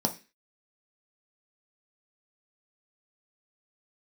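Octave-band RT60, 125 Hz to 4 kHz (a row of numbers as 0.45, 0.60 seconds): 0.30, 0.40, 0.30, 0.25, 0.40, 0.35 seconds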